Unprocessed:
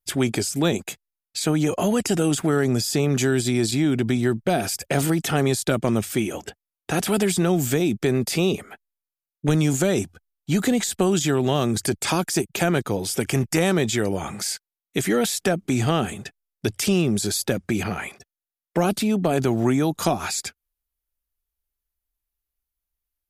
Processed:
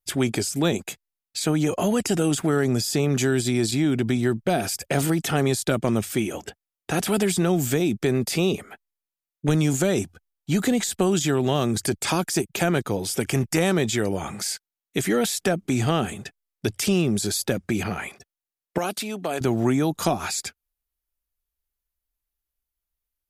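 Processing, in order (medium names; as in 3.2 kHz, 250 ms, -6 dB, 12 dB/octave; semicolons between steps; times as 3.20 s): 18.78–19.41 s: high-pass 730 Hz 6 dB/octave; trim -1 dB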